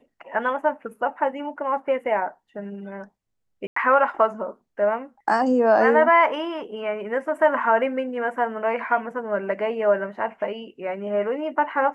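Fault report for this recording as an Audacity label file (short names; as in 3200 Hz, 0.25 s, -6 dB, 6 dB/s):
3.670000	3.760000	gap 94 ms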